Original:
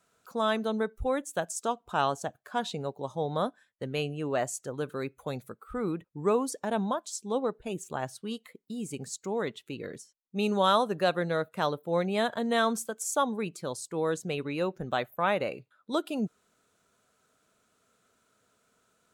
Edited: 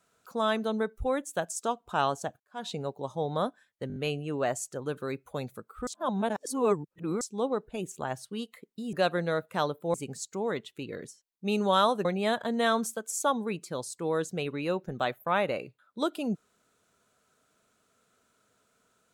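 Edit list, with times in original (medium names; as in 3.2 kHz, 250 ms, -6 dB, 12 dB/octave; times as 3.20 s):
2.40–2.70 s: fade in quadratic
3.88 s: stutter 0.02 s, 5 plays
5.79–7.13 s: reverse
10.96–11.97 s: move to 8.85 s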